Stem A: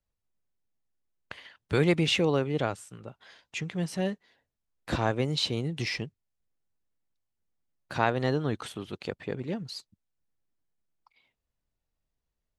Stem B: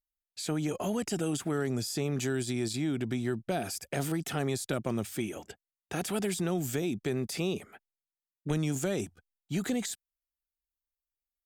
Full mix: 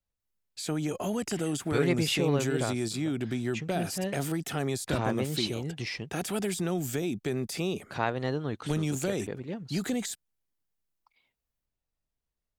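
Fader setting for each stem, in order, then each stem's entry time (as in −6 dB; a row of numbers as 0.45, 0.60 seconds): −3.5, +0.5 decibels; 0.00, 0.20 seconds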